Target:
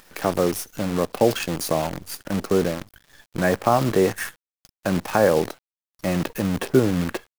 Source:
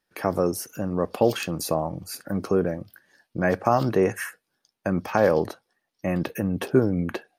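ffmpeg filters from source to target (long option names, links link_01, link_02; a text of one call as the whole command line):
ffmpeg -i in.wav -af "acompressor=mode=upward:threshold=-33dB:ratio=2.5,acrusher=bits=6:dc=4:mix=0:aa=0.000001,volume=2dB" out.wav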